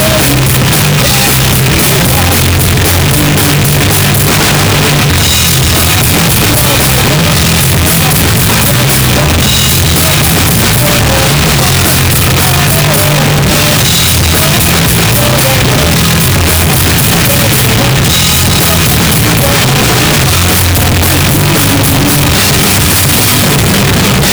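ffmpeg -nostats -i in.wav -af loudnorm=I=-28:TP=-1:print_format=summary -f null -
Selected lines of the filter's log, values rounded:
Input Integrated:     -6.2 LUFS
Input True Peak:      -1.1 dBTP
Input LRA:             0.4 LU
Input Threshold:     -16.2 LUFS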